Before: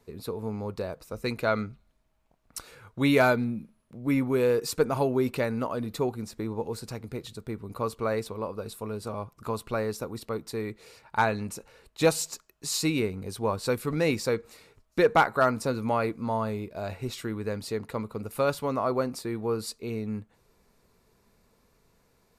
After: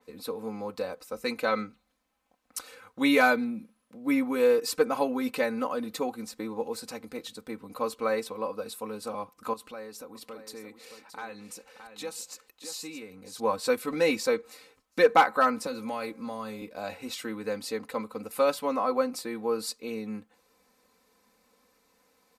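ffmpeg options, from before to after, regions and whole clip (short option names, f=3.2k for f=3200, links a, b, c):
-filter_complex "[0:a]asettb=1/sr,asplit=3[a][b][c];[a]atrim=end=9.534[d];[b]atrim=start=9.53:end=13.4,asetpts=PTS-STARTPTS,afade=t=in:d=0.004:c=qsin,afade=t=out:st=3.866:d=0.004:c=qsin,acompressor=threshold=-43dB:ratio=2.5:attack=3.2:release=140:knee=1:detection=peak,aecho=1:1:621:0.335,atrim=end_sample=170667[e];[c]atrim=start=13.396[f];[d][e]acrossfade=d=0.004:c1=hsin:c2=qsin[g];[g][f]acrossfade=d=0.004:c1=qsin:c2=hsin,asettb=1/sr,asplit=3[h][i][j];[h]atrim=end=15.664[k];[i]atrim=start=15.66:end=16.62,asetpts=PTS-STARTPTS,afade=t=in:d=0.004:c=qsin,afade=t=out:st=0.956:d=0.004:c=qsin,acrossover=split=150|3000[l][m][n];[m]acompressor=threshold=-36dB:ratio=2:attack=3.2:release=140:knee=2.83:detection=peak[o];[l][o][n]amix=inputs=3:normalize=0,bandreject=f=269.1:t=h:w=4,bandreject=f=538.2:t=h:w=4,bandreject=f=807.3:t=h:w=4,bandreject=f=1.0764k:t=h:w=4,bandreject=f=1.3455k:t=h:w=4,bandreject=f=1.6146k:t=h:w=4,bandreject=f=1.8837k:t=h:w=4,bandreject=f=2.1528k:t=h:w=4,bandreject=f=2.4219k:t=h:w=4,bandreject=f=2.691k:t=h:w=4,bandreject=f=2.9601k:t=h:w=4[p];[j]atrim=start=16.616[q];[k][p]acrossfade=d=0.004:c1=hsin:c2=qsin[r];[r][q]acrossfade=d=0.004:c1=qsin:c2=hsin,highpass=f=410:p=1,aecho=1:1:3.9:0.86,adynamicequalizer=threshold=0.01:dfrequency=4100:dqfactor=0.7:tfrequency=4100:tqfactor=0.7:attack=5:release=100:ratio=0.375:range=2:mode=cutabove:tftype=highshelf"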